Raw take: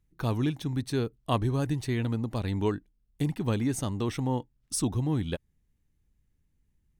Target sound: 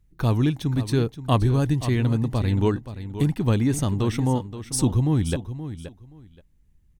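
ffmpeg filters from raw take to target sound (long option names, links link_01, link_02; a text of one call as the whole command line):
ffmpeg -i in.wav -filter_complex "[0:a]lowshelf=frequency=120:gain=7.5,asplit=2[link_01][link_02];[link_02]aecho=0:1:525|1050:0.251|0.0477[link_03];[link_01][link_03]amix=inputs=2:normalize=0,volume=4.5dB" out.wav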